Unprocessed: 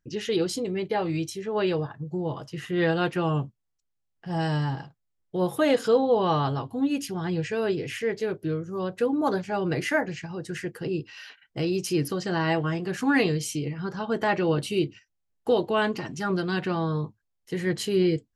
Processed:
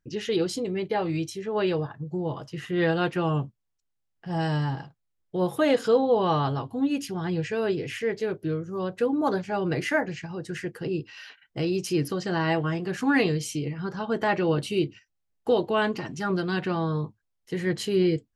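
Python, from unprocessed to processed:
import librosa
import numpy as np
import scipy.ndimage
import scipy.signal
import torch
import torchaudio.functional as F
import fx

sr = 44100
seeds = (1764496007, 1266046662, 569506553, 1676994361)

y = fx.high_shelf(x, sr, hz=8100.0, db=-5.0)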